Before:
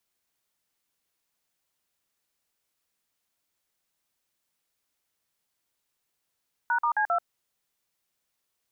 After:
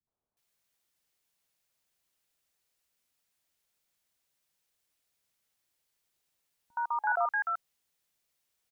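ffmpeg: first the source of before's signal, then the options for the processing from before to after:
-f lavfi -i "aevalsrc='0.0596*clip(min(mod(t,0.133),0.086-mod(t,0.133))/0.002,0,1)*(eq(floor(t/0.133),0)*(sin(2*PI*941*mod(t,0.133))+sin(2*PI*1477*mod(t,0.133)))+eq(floor(t/0.133),1)*(sin(2*PI*941*mod(t,0.133))+sin(2*PI*1209*mod(t,0.133)))+eq(floor(t/0.133),2)*(sin(2*PI*852*mod(t,0.133))+sin(2*PI*1633*mod(t,0.133)))+eq(floor(t/0.133),3)*(sin(2*PI*697*mod(t,0.133))+sin(2*PI*1336*mod(t,0.133))))':d=0.532:s=44100"
-filter_complex "[0:a]acrossover=split=290|1100[a][b][c];[b]adelay=70[d];[c]adelay=370[e];[a][d][e]amix=inputs=3:normalize=0"

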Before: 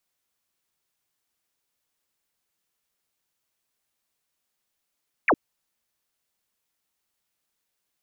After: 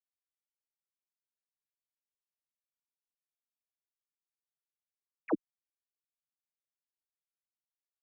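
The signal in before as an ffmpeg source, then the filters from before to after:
-f lavfi -i "aevalsrc='0.168*clip(t/0.002,0,1)*clip((0.06-t)/0.002,0,1)*sin(2*PI*2700*0.06/log(220/2700)*(exp(log(220/2700)*t/0.06)-1))':d=0.06:s=44100"
-filter_complex "[0:a]acrusher=bits=8:dc=4:mix=0:aa=0.000001,bandpass=f=280:t=q:w=1.7:csg=0,asplit=2[a][b];[b]adelay=5.3,afreqshift=-1.2[c];[a][c]amix=inputs=2:normalize=1"

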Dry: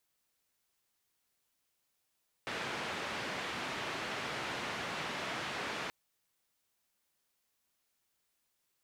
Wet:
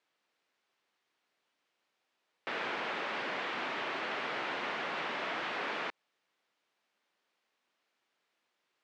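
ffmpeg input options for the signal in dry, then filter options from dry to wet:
-f lavfi -i "anoisesrc=c=white:d=3.43:r=44100:seed=1,highpass=f=110,lowpass=f=2400,volume=-24.8dB"
-filter_complex "[0:a]asplit=2[a][b];[b]alimiter=level_in=14dB:limit=-24dB:level=0:latency=1:release=95,volume=-14dB,volume=1dB[c];[a][c]amix=inputs=2:normalize=0,highpass=270,lowpass=3.2k"

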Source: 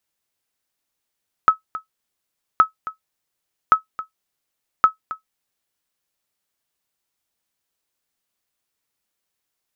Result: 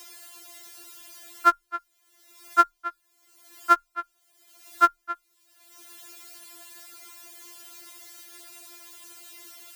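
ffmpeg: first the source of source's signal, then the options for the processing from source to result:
-f lavfi -i "aevalsrc='0.708*(sin(2*PI*1290*mod(t,1.12))*exp(-6.91*mod(t,1.12)/0.12)+0.158*sin(2*PI*1290*max(mod(t,1.12)-0.27,0))*exp(-6.91*max(mod(t,1.12)-0.27,0)/0.12))':d=4.48:s=44100"
-filter_complex "[0:a]asplit=2[a][b];[b]acompressor=mode=upward:threshold=-21dB:ratio=2.5,volume=2.5dB[c];[a][c]amix=inputs=2:normalize=0,afreqshift=23,afftfilt=real='re*4*eq(mod(b,16),0)':imag='im*4*eq(mod(b,16),0)':win_size=2048:overlap=0.75"

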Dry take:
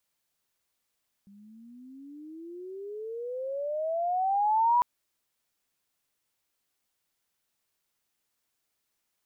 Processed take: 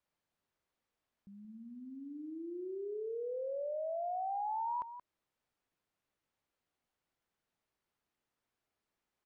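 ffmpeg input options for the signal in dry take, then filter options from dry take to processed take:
-f lavfi -i "aevalsrc='pow(10,(-19+31*(t/3.55-1))/20)*sin(2*PI*196*3.55/(28*log(2)/12)*(exp(28*log(2)/12*t/3.55)-1))':d=3.55:s=44100"
-af "lowpass=f=1.3k:p=1,acompressor=threshold=-38dB:ratio=4,aecho=1:1:177:0.266"

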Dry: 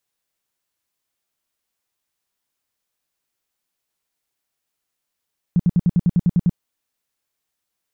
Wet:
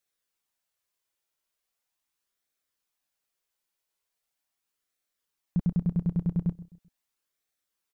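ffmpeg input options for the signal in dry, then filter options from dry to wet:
-f lavfi -i "aevalsrc='0.266*sin(2*PI*174*mod(t,0.1))*lt(mod(t,0.1),6/174)':d=1:s=44100"
-filter_complex "[0:a]equalizer=f=120:t=o:w=2.1:g=-6,flanger=delay=0.5:depth=1.6:regen=-58:speed=0.4:shape=sinusoidal,asplit=2[a][b];[b]adelay=129,lowpass=f=900:p=1,volume=-16.5dB,asplit=2[c][d];[d]adelay=129,lowpass=f=900:p=1,volume=0.36,asplit=2[e][f];[f]adelay=129,lowpass=f=900:p=1,volume=0.36[g];[a][c][e][g]amix=inputs=4:normalize=0"

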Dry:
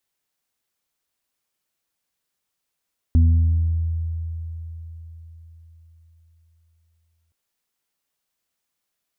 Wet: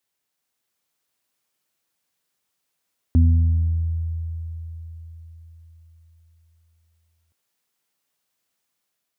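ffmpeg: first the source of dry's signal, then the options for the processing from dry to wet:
-f lavfi -i "aevalsrc='0.299*pow(10,-3*t/4.42)*sin(2*PI*82.3*t)+0.0335*pow(10,-3*t/2.37)*sin(2*PI*164.6*t)+0.0841*pow(10,-3*t/1.09)*sin(2*PI*246.9*t)':d=4.17:s=44100"
-af "highpass=82,dynaudnorm=f=260:g=5:m=3dB"

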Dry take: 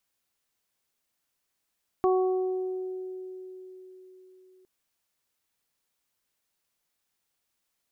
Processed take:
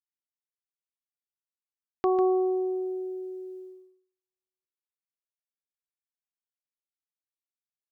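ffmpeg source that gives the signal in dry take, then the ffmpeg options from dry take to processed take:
-f lavfi -i "aevalsrc='0.1*pow(10,-3*t/4.32)*sin(2*PI*372*t)+0.0501*pow(10,-3*t/1.83)*sin(2*PI*744*t)+0.0376*pow(10,-3*t/0.92)*sin(2*PI*1116*t)':d=2.61:s=44100"
-af "agate=range=-49dB:threshold=-46dB:ratio=16:detection=peak,aecho=1:1:148:0.376"

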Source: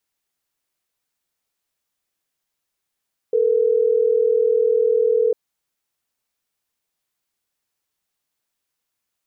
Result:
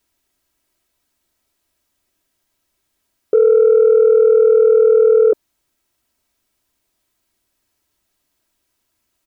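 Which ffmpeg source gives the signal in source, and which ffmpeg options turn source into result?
-f lavfi -i "aevalsrc='0.141*(sin(2*PI*440*t)+sin(2*PI*480*t))*clip(min(mod(t,6),2-mod(t,6))/0.005,0,1)':d=3.12:s=44100"
-af "lowshelf=f=420:g=8.5,aecho=1:1:3.1:0.48,acontrast=86"

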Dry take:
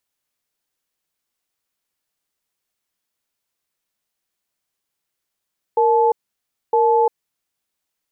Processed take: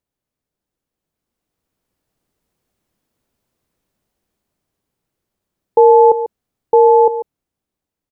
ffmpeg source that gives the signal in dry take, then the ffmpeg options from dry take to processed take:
-f lavfi -i "aevalsrc='0.178*(sin(2*PI*464*t)+sin(2*PI*866*t))*clip(min(mod(t,0.96),0.35-mod(t,0.96))/0.005,0,1)':d=1.67:s=44100"
-af "tiltshelf=f=770:g=9.5,dynaudnorm=f=470:g=7:m=11dB,aecho=1:1:143:0.251"

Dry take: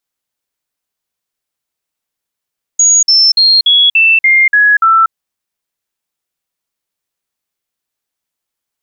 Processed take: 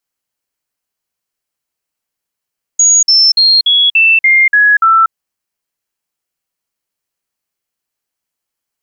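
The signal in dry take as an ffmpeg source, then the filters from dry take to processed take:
-f lavfi -i "aevalsrc='0.596*clip(min(mod(t,0.29),0.24-mod(t,0.29))/0.005,0,1)*sin(2*PI*6710*pow(2,-floor(t/0.29)/3)*mod(t,0.29))':d=2.32:s=44100"
-af "bandreject=f=3.6k:w=11"

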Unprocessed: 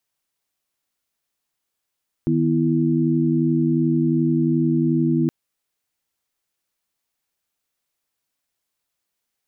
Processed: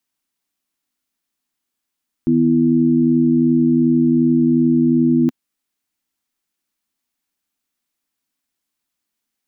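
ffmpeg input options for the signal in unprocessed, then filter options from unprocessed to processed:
-f lavfi -i "aevalsrc='0.0944*(sin(2*PI*155.56*t)+sin(2*PI*246.94*t)+sin(2*PI*329.63*t))':d=3.02:s=44100"
-af "equalizer=f=125:t=o:w=1:g=-6,equalizer=f=250:t=o:w=1:g=10,equalizer=f=500:t=o:w=1:g=-6"

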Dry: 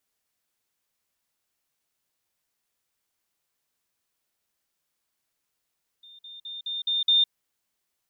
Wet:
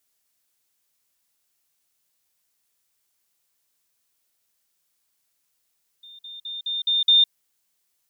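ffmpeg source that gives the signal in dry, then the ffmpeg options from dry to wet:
-f lavfi -i "aevalsrc='pow(10,(-46.5+6*floor(t/0.21))/20)*sin(2*PI*3620*t)*clip(min(mod(t,0.21),0.16-mod(t,0.21))/0.005,0,1)':d=1.26:s=44100"
-af "highshelf=f=3.5k:g=8.5"

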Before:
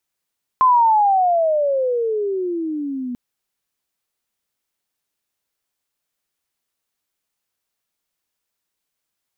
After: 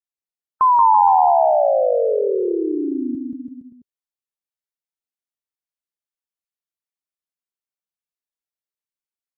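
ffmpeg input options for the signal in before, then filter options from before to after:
-f lavfi -i "aevalsrc='pow(10,(-9.5-14*t/2.54)/20)*sin(2*PI*1050*2.54/(-25.5*log(2)/12)*(exp(-25.5*log(2)/12*t/2.54)-1))':d=2.54:s=44100"
-filter_complex "[0:a]afftdn=nr=20:nf=-30,asplit=2[a][b];[b]aecho=0:1:180|333|463|573.6|667.6:0.631|0.398|0.251|0.158|0.1[c];[a][c]amix=inputs=2:normalize=0"

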